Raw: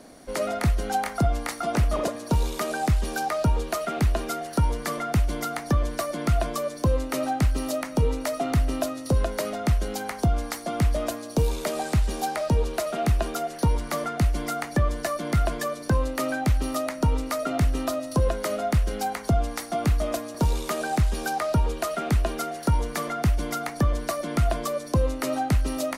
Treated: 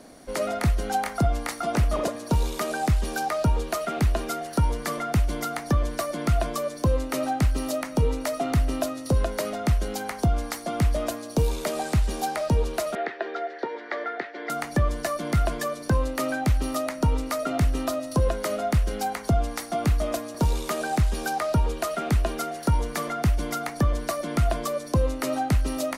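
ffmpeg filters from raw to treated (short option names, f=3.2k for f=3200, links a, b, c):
-filter_complex "[0:a]asettb=1/sr,asplit=3[a][b][c];[a]atrim=end=12.954[d];[b]atrim=start=12.95:end=14.5,asetpts=PTS-STARTPTS,afade=t=in:d=0.004:c=qsin,afade=t=out:st=1.546:d=0.004:c=qsin,highpass=f=370:w=0.5412,highpass=f=370:w=1.3066,equalizer=f=390:t=q:w=4:g=5,equalizer=f=600:t=q:w=4:g=-3,equalizer=f=1.1k:t=q:w=4:g=-8,equalizer=f=1.8k:t=q:w=4:g=10,equalizer=f=2.8k:t=q:w=4:g=-8,lowpass=f=3.5k:w=0.5412,lowpass=f=3.5k:w=1.3066[e];[c]atrim=start=14.496[f];[d][e]acrossfade=d=0.004:c1=hsin:c2=qsin[g];[g][f]acrossfade=d=0.004:c1=qsin:c2=hsin"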